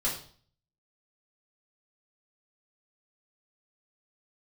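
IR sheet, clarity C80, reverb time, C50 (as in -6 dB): 10.5 dB, 0.50 s, 6.5 dB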